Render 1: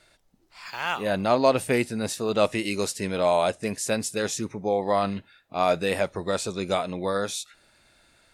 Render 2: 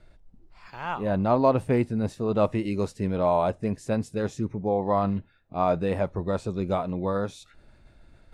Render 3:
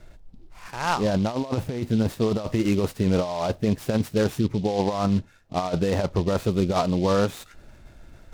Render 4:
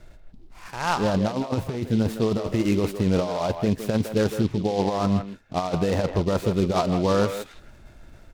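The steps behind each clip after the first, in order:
tilt -4 dB/oct; reverse; upward compressor, threshold -39 dBFS; reverse; dynamic EQ 1000 Hz, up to +7 dB, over -35 dBFS, Q 1.8; gain -6 dB
negative-ratio compressor -26 dBFS, ratio -0.5; noise-modulated delay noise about 3500 Hz, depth 0.037 ms; gain +4.5 dB
speakerphone echo 0.16 s, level -7 dB

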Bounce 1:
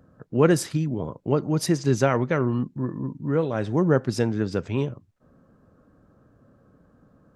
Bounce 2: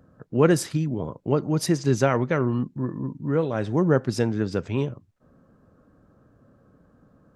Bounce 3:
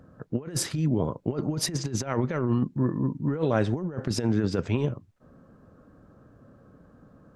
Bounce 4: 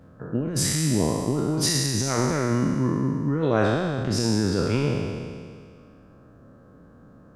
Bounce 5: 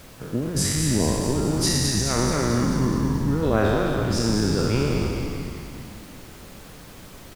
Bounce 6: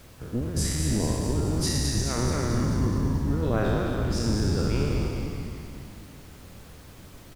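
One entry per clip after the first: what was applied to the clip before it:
nothing audible
negative-ratio compressor -25 dBFS, ratio -0.5; high shelf 8800 Hz -4 dB
spectral trails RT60 2.00 s
added noise pink -46 dBFS; on a send: frequency-shifting echo 0.215 s, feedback 60%, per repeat -70 Hz, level -5.5 dB
octaver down 1 oct, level +2 dB; gain -6 dB

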